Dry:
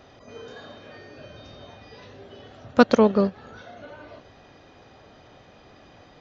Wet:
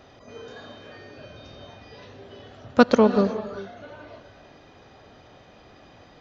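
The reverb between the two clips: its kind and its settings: non-linear reverb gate 0.41 s rising, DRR 11.5 dB

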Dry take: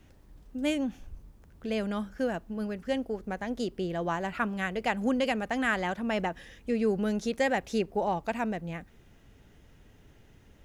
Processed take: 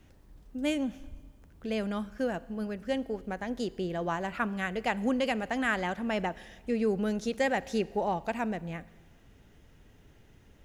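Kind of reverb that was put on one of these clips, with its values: Schroeder reverb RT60 1.5 s, combs from 33 ms, DRR 19.5 dB; gain -1 dB

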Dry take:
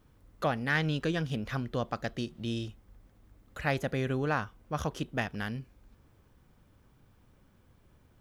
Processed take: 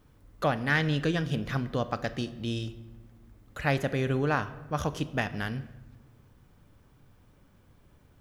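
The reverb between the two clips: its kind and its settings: shoebox room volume 690 m³, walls mixed, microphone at 0.35 m; gain +2.5 dB

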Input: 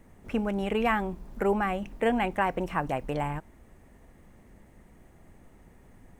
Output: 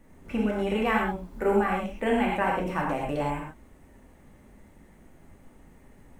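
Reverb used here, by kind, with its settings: non-linear reverb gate 0.15 s flat, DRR -3 dB; gain -3 dB

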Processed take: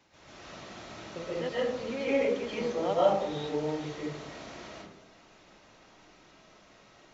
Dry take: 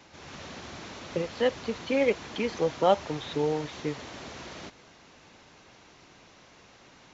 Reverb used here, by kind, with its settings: digital reverb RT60 0.78 s, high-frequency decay 0.35×, pre-delay 95 ms, DRR -8.5 dB; gain -11.5 dB

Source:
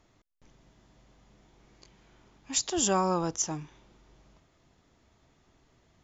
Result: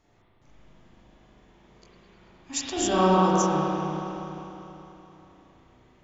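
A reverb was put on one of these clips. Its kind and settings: spring tank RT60 3.4 s, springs 32/39 ms, chirp 75 ms, DRR -8.5 dB; gain -2.5 dB

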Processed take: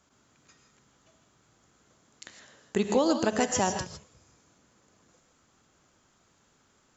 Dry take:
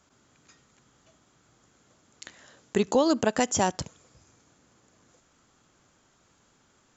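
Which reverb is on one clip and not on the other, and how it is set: non-linear reverb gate 0.18 s rising, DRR 5.5 dB; gain -2.5 dB

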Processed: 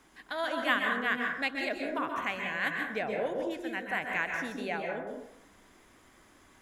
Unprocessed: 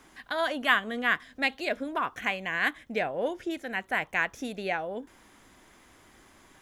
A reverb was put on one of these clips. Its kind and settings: plate-style reverb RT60 0.76 s, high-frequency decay 0.45×, pre-delay 0.115 s, DRR 1.5 dB; gain -5 dB

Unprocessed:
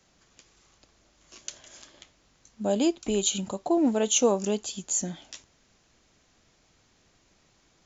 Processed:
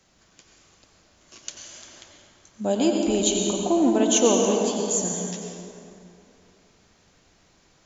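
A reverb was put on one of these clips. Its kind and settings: plate-style reverb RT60 2.8 s, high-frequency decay 0.55×, pre-delay 80 ms, DRR 0.5 dB; gain +2 dB

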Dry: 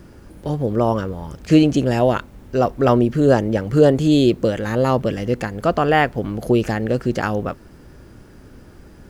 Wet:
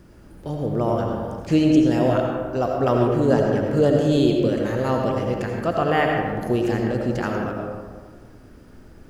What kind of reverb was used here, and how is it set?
digital reverb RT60 1.7 s, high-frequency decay 0.4×, pre-delay 45 ms, DRR 0.5 dB; gain -6 dB

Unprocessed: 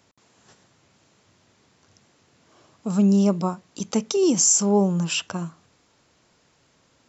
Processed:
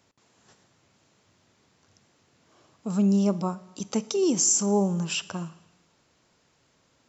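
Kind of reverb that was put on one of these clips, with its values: Schroeder reverb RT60 1.1 s, DRR 18 dB; gain -4 dB

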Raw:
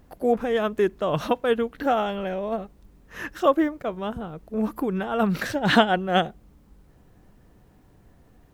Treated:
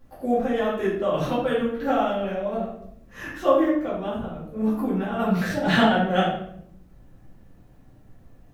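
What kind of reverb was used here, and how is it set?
shoebox room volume 150 m³, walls mixed, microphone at 2.3 m; gain -9 dB

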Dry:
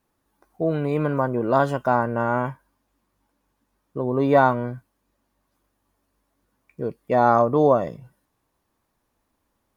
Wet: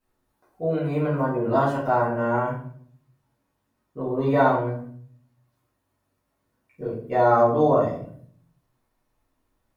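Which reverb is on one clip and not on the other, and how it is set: shoebox room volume 71 m³, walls mixed, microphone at 2 m; gain -11 dB

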